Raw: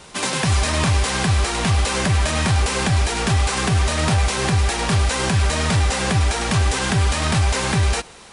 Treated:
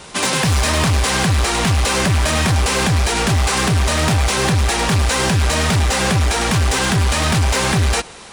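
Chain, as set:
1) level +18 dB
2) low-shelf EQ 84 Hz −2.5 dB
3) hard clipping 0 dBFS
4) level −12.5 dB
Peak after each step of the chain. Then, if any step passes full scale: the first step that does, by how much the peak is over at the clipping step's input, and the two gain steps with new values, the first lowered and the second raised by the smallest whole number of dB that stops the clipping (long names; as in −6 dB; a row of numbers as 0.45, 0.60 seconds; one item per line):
+8.5, +8.5, 0.0, −12.5 dBFS
step 1, 8.5 dB
step 1 +9 dB, step 4 −3.5 dB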